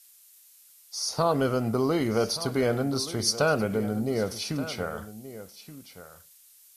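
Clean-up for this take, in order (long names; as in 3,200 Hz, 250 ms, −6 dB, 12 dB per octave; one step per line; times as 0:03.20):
broadband denoise 17 dB, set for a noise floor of −56 dBFS
echo removal 1,176 ms −14.5 dB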